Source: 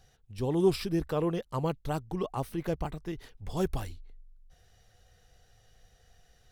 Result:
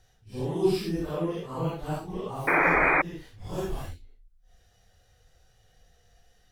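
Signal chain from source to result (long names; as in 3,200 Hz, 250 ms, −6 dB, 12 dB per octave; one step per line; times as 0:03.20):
random phases in long frames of 200 ms
sound drawn into the spectrogram noise, 0:02.47–0:03.02, 260–2,500 Hz −22 dBFS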